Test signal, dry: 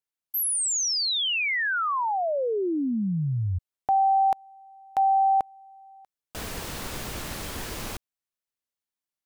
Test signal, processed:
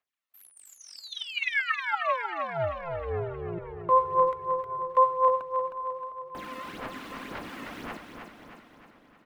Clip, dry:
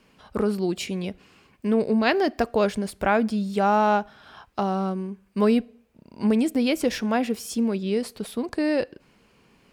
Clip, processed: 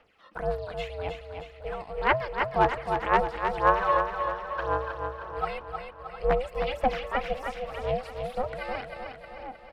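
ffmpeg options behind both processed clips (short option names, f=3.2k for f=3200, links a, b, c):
-filter_complex "[0:a]acrossover=split=3200[a][b];[b]acompressor=threshold=-41dB:ratio=4:attack=1:release=60[c];[a][c]amix=inputs=2:normalize=0,asplit=2[d][e];[e]adelay=708,lowpass=f=3k:p=1,volume=-16dB,asplit=2[f][g];[g]adelay=708,lowpass=f=3k:p=1,volume=0.48,asplit=2[h][i];[i]adelay=708,lowpass=f=3k:p=1,volume=0.48,asplit=2[j][k];[k]adelay=708,lowpass=f=3k:p=1,volume=0.48[l];[f][h][j][l]amix=inputs=4:normalize=0[m];[d][m]amix=inputs=2:normalize=0,aphaser=in_gain=1:out_gain=1:delay=1.3:decay=0.76:speed=1.9:type=sinusoidal,aeval=exprs='val(0)*sin(2*PI*260*n/s)':c=same,equalizer=f=570:w=0.54:g=-3,aeval=exprs='0.631*(abs(mod(val(0)/0.631+3,4)-2)-1)':c=same,asplit=2[n][o];[o]aecho=0:1:312|624|936|1248|1560|1872:0.501|0.261|0.136|0.0705|0.0366|0.0191[p];[n][p]amix=inputs=2:normalize=0,acompressor=mode=upward:threshold=-55dB:ratio=1.5:attack=0.83:release=60:knee=2.83:detection=peak,acrossover=split=540 3300:gain=0.224 1 0.2[q][r][s];[q][r][s]amix=inputs=3:normalize=0,volume=-2dB"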